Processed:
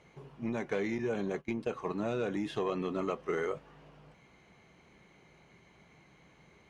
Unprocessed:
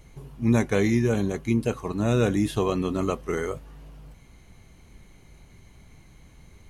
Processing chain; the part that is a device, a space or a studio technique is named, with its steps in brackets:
AM radio (band-pass filter 160–4,000 Hz; downward compressor 10 to 1, threshold −24 dBFS, peak gain reduction 7.5 dB; soft clipping −18.5 dBFS, distortion −22 dB)
0:00.98–0:01.71: noise gate −34 dBFS, range −17 dB
graphic EQ with 15 bands 100 Hz −8 dB, 250 Hz −6 dB, 4,000 Hz −3 dB
level −1 dB

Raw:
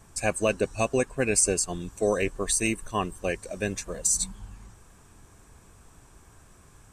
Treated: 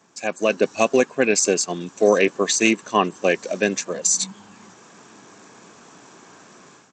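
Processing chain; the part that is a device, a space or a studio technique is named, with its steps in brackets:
Bluetooth headset (high-pass filter 190 Hz 24 dB per octave; automatic gain control gain up to 12 dB; downsampling to 16,000 Hz; SBC 64 kbit/s 32,000 Hz)

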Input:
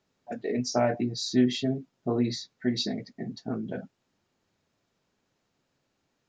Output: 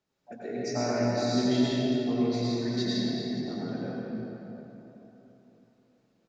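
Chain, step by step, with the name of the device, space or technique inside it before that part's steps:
cave (single-tap delay 289 ms −12.5 dB; convolution reverb RT60 3.6 s, pre-delay 82 ms, DRR −8 dB)
level −8 dB

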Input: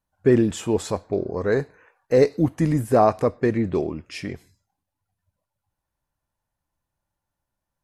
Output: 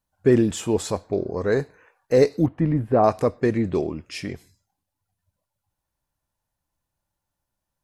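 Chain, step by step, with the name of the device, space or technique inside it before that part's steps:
0:02.46–0:03.04: high-frequency loss of the air 480 metres
exciter from parts (in parallel at −7 dB: high-pass filter 2,500 Hz 12 dB per octave + soft clipping −28 dBFS, distortion −18 dB)

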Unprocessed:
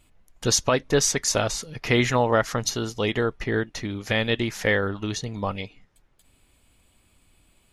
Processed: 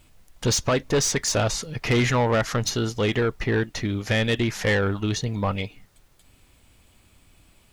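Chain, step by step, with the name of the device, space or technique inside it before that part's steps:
open-reel tape (soft clipping −20 dBFS, distortion −10 dB; parametric band 100 Hz +3 dB 1.12 octaves; white noise bed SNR 39 dB)
high-shelf EQ 7,900 Hz −6 dB
level +4 dB

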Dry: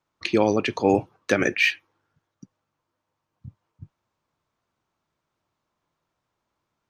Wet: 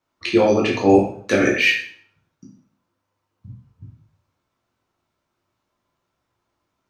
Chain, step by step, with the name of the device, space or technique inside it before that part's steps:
bathroom (convolution reverb RT60 0.55 s, pre-delay 9 ms, DRR −3 dB)
level −1 dB

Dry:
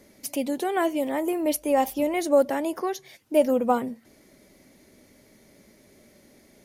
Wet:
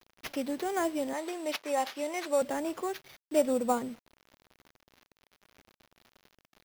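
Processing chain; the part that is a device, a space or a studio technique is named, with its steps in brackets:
early 8-bit sampler (sample-rate reduction 8,200 Hz, jitter 0%; bit reduction 8 bits)
0:01.13–0:02.42: meter weighting curve A
level −6 dB

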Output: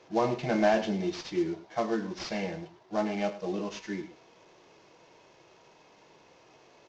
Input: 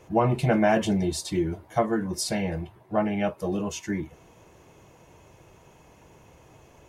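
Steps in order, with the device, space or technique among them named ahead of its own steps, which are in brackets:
0:01.16–0:01.79: notch filter 4,100 Hz, Q 23
harmonic and percussive parts rebalanced percussive −7 dB
early wireless headset (high-pass filter 270 Hz 12 dB per octave; variable-slope delta modulation 32 kbit/s)
single-tap delay 103 ms −14.5 dB

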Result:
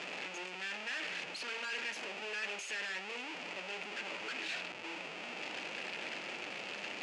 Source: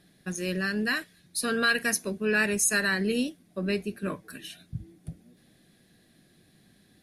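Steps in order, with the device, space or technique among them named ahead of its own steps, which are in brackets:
adaptive Wiener filter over 15 samples
home computer beeper (sign of each sample alone; loudspeaker in its box 710–5,700 Hz, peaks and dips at 710 Hz −4 dB, 1,100 Hz −9 dB, 1,600 Hz −5 dB, 2,600 Hz +9 dB, 3,900 Hz −7 dB, 5,600 Hz −6 dB)
hum removal 57.14 Hz, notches 37
level −3 dB

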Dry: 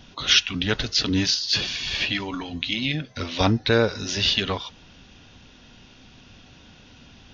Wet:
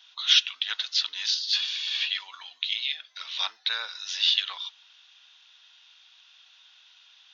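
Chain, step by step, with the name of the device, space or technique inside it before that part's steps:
headphones lying on a table (high-pass filter 1,000 Hz 24 dB per octave; parametric band 3,600 Hz +10 dB 0.56 octaves)
level −8 dB

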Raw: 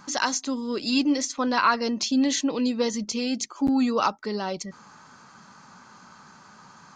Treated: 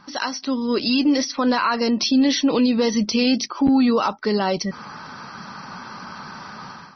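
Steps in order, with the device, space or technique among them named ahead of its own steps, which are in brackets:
low-bitrate web radio (automatic gain control gain up to 14 dB; brickwall limiter −10.5 dBFS, peak gain reduction 9.5 dB; MP3 24 kbit/s 24,000 Hz)

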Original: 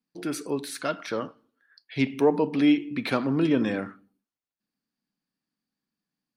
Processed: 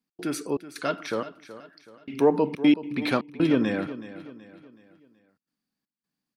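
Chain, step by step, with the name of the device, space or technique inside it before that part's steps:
trance gate with a delay (gate pattern "x.xxxx..xxxxx." 159 BPM −60 dB; repeating echo 375 ms, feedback 42%, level −14.5 dB)
level +1 dB

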